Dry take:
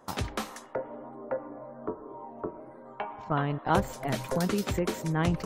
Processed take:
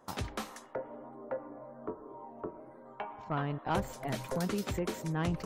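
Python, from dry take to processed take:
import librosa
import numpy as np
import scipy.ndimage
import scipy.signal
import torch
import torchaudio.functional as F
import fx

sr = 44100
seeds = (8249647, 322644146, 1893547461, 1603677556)

y = 10.0 ** (-17.5 / 20.0) * np.tanh(x / 10.0 ** (-17.5 / 20.0))
y = F.gain(torch.from_numpy(y), -4.5).numpy()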